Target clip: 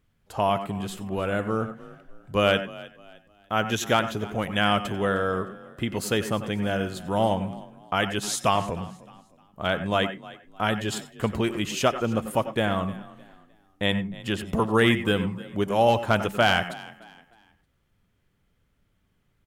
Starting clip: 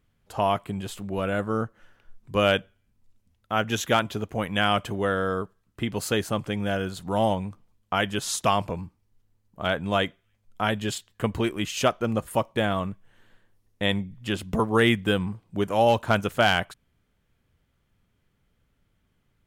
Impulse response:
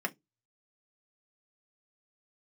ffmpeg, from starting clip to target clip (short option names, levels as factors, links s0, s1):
-filter_complex "[0:a]asplit=4[s0][s1][s2][s3];[s1]adelay=307,afreqshift=35,volume=0.106[s4];[s2]adelay=614,afreqshift=70,volume=0.0351[s5];[s3]adelay=921,afreqshift=105,volume=0.0115[s6];[s0][s4][s5][s6]amix=inputs=4:normalize=0,asplit=2[s7][s8];[1:a]atrim=start_sample=2205,adelay=91[s9];[s8][s9]afir=irnorm=-1:irlink=0,volume=0.158[s10];[s7][s10]amix=inputs=2:normalize=0"